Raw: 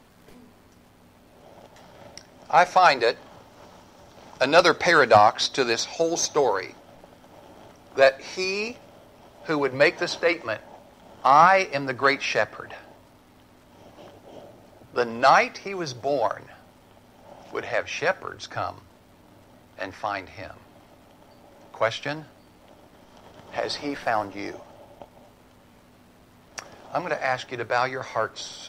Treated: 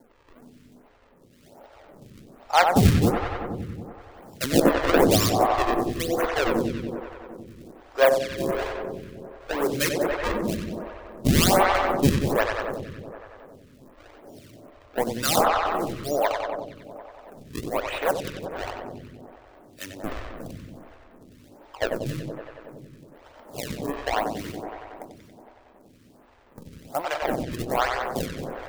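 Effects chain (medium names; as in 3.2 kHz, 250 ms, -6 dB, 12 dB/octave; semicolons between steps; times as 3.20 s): decimation with a swept rate 35×, swing 160% 1.1 Hz; filtered feedback delay 93 ms, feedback 79%, low-pass 4.8 kHz, level -5 dB; lamp-driven phase shifter 1.3 Hz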